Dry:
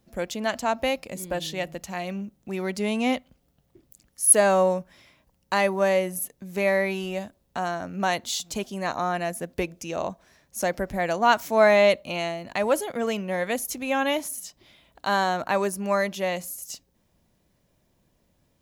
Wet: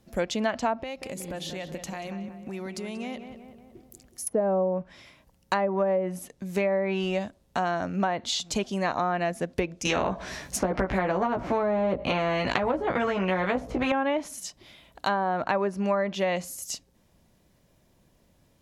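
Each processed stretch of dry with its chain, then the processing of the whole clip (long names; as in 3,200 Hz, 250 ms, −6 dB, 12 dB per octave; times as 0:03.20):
0:00.83–0:04.27: downward compressor 8 to 1, threshold −36 dBFS + feedback echo with a low-pass in the loop 185 ms, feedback 57%, low-pass 2,200 Hz, level −8 dB
0:09.85–0:13.92: double-tracking delay 16 ms −3 dB + every bin compressed towards the loudest bin 2 to 1
whole clip: treble cut that deepens with the level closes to 610 Hz, closed at −16.5 dBFS; downward compressor, threshold −26 dBFS; level +4 dB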